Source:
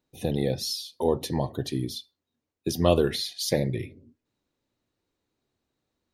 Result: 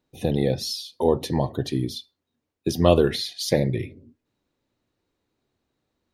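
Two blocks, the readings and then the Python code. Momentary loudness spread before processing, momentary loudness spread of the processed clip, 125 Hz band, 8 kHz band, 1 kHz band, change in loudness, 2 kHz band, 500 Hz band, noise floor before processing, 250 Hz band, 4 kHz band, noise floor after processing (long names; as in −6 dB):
12 LU, 13 LU, +4.0 dB, 0.0 dB, +4.0 dB, +3.5 dB, +3.5 dB, +4.0 dB, −85 dBFS, +4.0 dB, +1.5 dB, −81 dBFS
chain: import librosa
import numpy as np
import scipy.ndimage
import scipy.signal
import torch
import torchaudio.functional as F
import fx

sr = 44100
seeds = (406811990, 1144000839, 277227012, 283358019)

y = fx.high_shelf(x, sr, hz=5700.0, db=-6.5)
y = y * 10.0 ** (4.0 / 20.0)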